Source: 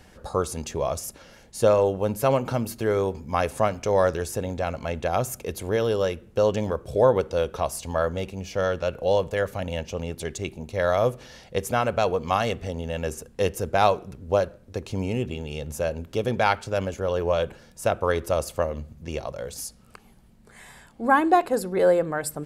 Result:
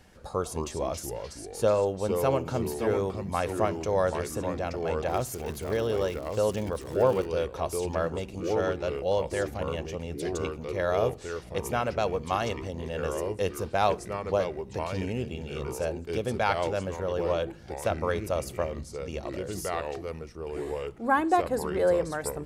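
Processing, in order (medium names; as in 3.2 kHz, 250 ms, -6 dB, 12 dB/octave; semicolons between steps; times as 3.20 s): ever faster or slower copies 150 ms, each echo -3 st, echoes 2, each echo -6 dB; 5.08–7.26 s: crackle 160 per s -29 dBFS; trim -5 dB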